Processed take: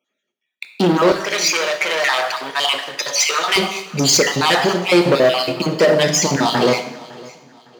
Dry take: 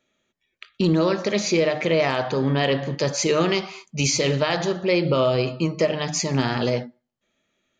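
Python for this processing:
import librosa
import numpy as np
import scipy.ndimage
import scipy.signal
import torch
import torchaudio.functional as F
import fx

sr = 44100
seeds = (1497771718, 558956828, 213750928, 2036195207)

y = fx.spec_dropout(x, sr, seeds[0], share_pct=39)
y = fx.leveller(y, sr, passes=3)
y = fx.highpass(y, sr, hz=fx.steps((0.0, 240.0), (1.12, 990.0), (3.56, 220.0)), slope=12)
y = fx.echo_feedback(y, sr, ms=558, feedback_pct=34, wet_db=-21.5)
y = fx.rev_double_slope(y, sr, seeds[1], early_s=0.76, late_s=3.3, knee_db=-21, drr_db=7.0)
y = y * librosa.db_to_amplitude(2.5)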